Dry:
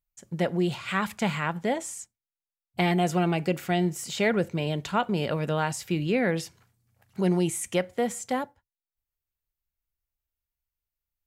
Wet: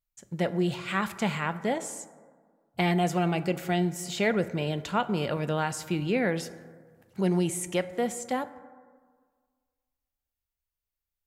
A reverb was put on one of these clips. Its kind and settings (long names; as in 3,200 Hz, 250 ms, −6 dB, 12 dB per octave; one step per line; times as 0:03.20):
dense smooth reverb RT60 1.7 s, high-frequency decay 0.35×, DRR 13 dB
level −1.5 dB